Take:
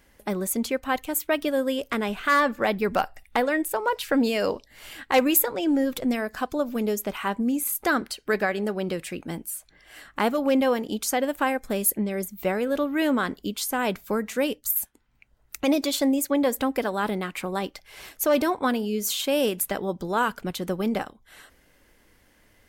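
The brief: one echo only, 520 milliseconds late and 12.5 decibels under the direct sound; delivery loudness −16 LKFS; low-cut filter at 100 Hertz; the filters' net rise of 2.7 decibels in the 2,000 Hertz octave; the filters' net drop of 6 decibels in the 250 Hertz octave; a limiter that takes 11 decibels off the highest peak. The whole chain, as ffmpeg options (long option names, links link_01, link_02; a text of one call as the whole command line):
ffmpeg -i in.wav -af "highpass=100,equalizer=frequency=250:width_type=o:gain=-7,equalizer=frequency=2000:width_type=o:gain=3.5,alimiter=limit=-17dB:level=0:latency=1,aecho=1:1:520:0.237,volume=12.5dB" out.wav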